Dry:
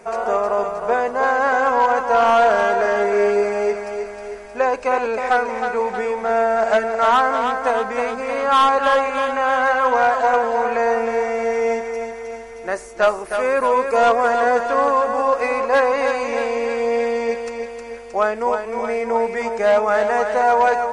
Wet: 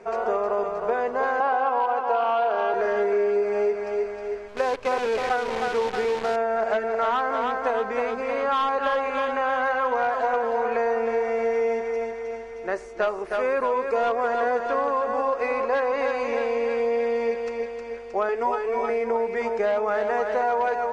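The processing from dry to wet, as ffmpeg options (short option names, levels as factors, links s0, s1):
-filter_complex "[0:a]asettb=1/sr,asplit=3[s0][s1][s2];[s0]atrim=end=1.404[s3];[s1]atrim=start=1.4:end=2.74,asetpts=PTS-STARTPTS,afade=t=in:d=0.004:c=qsin,afade=t=out:st=1.336:d=0.004:c=qsin,highpass=f=240:w=0.5412,highpass=f=240:w=1.3066,equalizer=f=790:t=q:w=4:g=8,equalizer=f=1200:t=q:w=4:g=4,equalizer=f=1900:t=q:w=4:g=-7,equalizer=f=2800:t=q:w=4:g=5,lowpass=f=5200:w=0.5412,lowpass=f=5200:w=1.3066[s4];[s2]atrim=start=2.736[s5];[s3][s4]acrossfade=d=0.004:c1=hsin:c2=qsin[s6];[s6][s5]acrossfade=d=0.004:c1=qsin:c2=hsin,asettb=1/sr,asplit=3[s7][s8][s9];[s7]atrim=end=4.484[s10];[s8]atrim=start=4.48:end=6.36,asetpts=PTS-STARTPTS,afade=t=in:d=0.004:c=qsin,afade=t=out:st=1.876:d=0.004:c=qsin,acrusher=bits=5:dc=4:mix=0:aa=0.000001[s11];[s9]atrim=start=6.356[s12];[s10][s11]acrossfade=d=0.004:c1=hsin:c2=qsin[s13];[s13][s12]acrossfade=d=0.004:c1=qsin:c2=hsin,asettb=1/sr,asplit=3[s14][s15][s16];[s14]atrim=end=18.284[s17];[s15]atrim=start=18.28:end=18.9,asetpts=PTS-STARTPTS,afade=t=in:d=0.004:c=qsin,afade=t=out:st=0.616:d=0.004:c=qsin,aecho=1:1:7.1:0.88,atrim=end_sample=27342[s18];[s16]atrim=start=18.896[s19];[s17][s18]acrossfade=d=0.004:c1=hsin:c2=qsin[s20];[s20][s19]acrossfade=d=0.004:c1=qsin:c2=hsin,lowpass=4700,equalizer=f=410:w=3.9:g=6,acompressor=threshold=0.158:ratio=6,volume=0.631"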